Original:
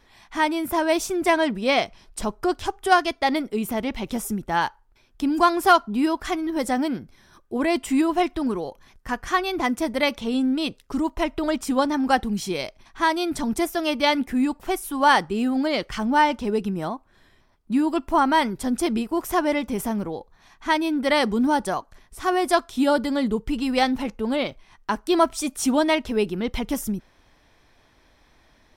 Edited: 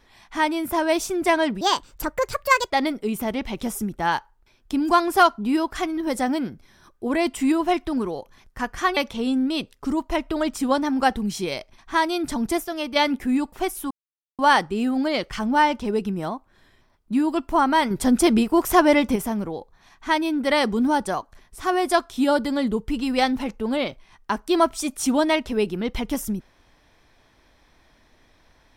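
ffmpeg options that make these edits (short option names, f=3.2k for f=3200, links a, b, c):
-filter_complex "[0:a]asplit=9[a][b][c][d][e][f][g][h][i];[a]atrim=end=1.614[j];[b]atrim=start=1.61:end=3.2,asetpts=PTS-STARTPTS,asetrate=63945,aresample=44100[k];[c]atrim=start=3.196:end=9.462[l];[d]atrim=start=10.038:end=13.722[m];[e]atrim=start=13.718:end=14.032,asetpts=PTS-STARTPTS,volume=-4.5dB[n];[f]atrim=start=14.028:end=14.98,asetpts=PTS-STARTPTS,afade=t=out:st=0.948:d=0.004:c=hsin,apad=pad_dur=0.48[o];[g]atrim=start=14.98:end=18.502,asetpts=PTS-STARTPTS,afade=t=in:d=0.004:c=hsin[p];[h]atrim=start=18.498:end=19.752,asetpts=PTS-STARTPTS,volume=6dB[q];[i]atrim=start=19.748[r];[j][k]acrossfade=d=0.004:c1=hsin:c2=hsin[s];[s][l]acrossfade=d=0.004:c1=hsin:c2=hsin[t];[t][m]acrossfade=d=0.004:c1=hsin:c2=hsin[u];[u][n]acrossfade=d=0.004:c1=hsin:c2=hsin[v];[o][p]concat=n=2:v=0:a=1[w];[v][w]acrossfade=d=0.004:c1=hsin:c2=hsin[x];[x][q]acrossfade=d=0.004:c1=hsin:c2=hsin[y];[y][r]acrossfade=d=0.004:c1=hsin:c2=hsin"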